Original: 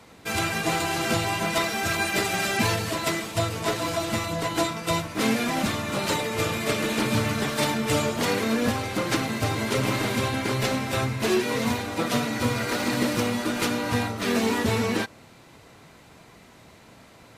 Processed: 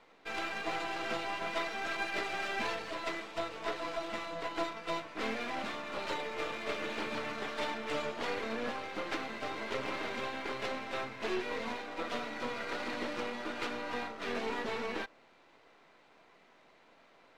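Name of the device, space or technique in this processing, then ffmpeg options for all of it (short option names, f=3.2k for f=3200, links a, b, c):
crystal radio: -af "highpass=370,lowpass=3.4k,aeval=exprs='if(lt(val(0),0),0.447*val(0),val(0))':c=same,volume=-6.5dB"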